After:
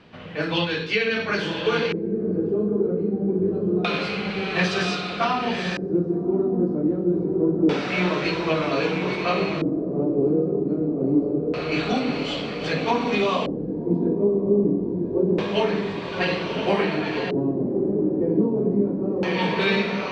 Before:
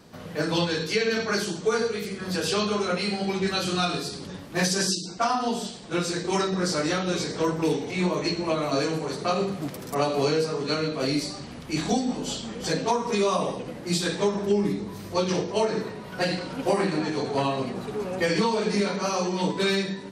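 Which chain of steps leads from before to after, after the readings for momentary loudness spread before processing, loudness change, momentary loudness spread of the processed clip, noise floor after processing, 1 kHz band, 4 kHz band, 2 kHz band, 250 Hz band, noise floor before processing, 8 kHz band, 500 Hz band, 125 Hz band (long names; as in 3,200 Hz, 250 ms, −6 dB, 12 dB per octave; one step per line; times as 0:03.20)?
7 LU, +3.0 dB, 4 LU, −30 dBFS, 0.0 dB, −1.0 dB, +4.0 dB, +5.0 dB, −40 dBFS, below −10 dB, +3.0 dB, +3.0 dB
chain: feedback delay with all-pass diffusion 1,128 ms, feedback 45%, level −3 dB
auto-filter low-pass square 0.26 Hz 340–2,800 Hz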